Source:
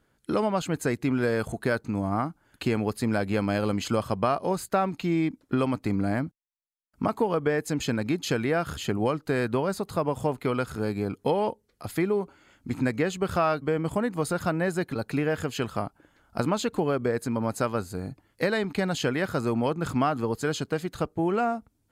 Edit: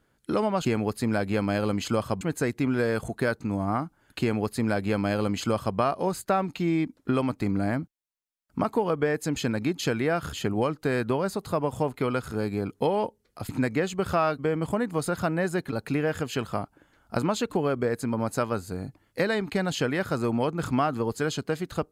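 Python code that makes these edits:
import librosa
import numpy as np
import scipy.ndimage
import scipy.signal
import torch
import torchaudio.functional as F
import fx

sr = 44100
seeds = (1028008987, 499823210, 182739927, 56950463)

y = fx.edit(x, sr, fx.duplicate(start_s=2.65, length_s=1.56, to_s=0.65),
    fx.cut(start_s=11.93, length_s=0.79), tone=tone)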